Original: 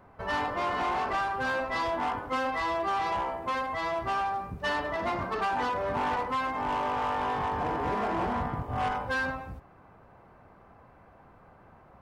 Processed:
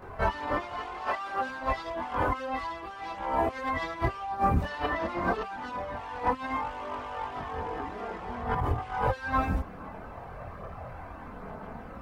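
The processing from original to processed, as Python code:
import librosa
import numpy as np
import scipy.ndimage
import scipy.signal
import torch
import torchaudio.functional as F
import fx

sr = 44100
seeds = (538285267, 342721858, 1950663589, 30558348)

y = fx.highpass(x, sr, hz=fx.line((1.04, 530.0), (1.46, 250.0)), slope=6, at=(1.04, 1.46), fade=0.02)
y = fx.over_compress(y, sr, threshold_db=-36.0, ratio=-0.5)
y = fx.chorus_voices(y, sr, voices=4, hz=0.27, base_ms=24, depth_ms=2.4, mix_pct=65)
y = y * librosa.db_to_amplitude(8.5)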